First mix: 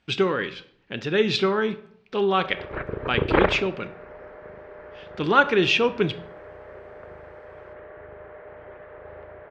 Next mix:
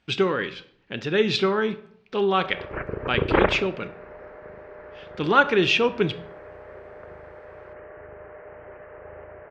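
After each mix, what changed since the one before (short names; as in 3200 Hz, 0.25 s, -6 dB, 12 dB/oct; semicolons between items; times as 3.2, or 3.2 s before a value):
background: add steep low-pass 3000 Hz 96 dB/oct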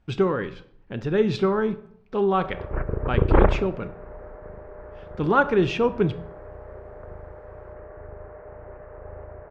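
master: remove weighting filter D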